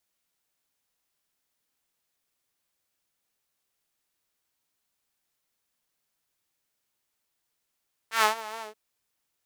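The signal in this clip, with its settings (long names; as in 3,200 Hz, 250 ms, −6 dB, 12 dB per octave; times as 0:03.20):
subtractive patch with vibrato A4, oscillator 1 saw, detune 27 cents, sub −2 dB, filter highpass, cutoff 410 Hz, Q 1.8, filter envelope 2 octaves, filter decay 0.18 s, filter sustain 50%, attack 116 ms, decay 0.12 s, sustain −19 dB, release 0.12 s, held 0.51 s, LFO 4.8 Hz, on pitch 58 cents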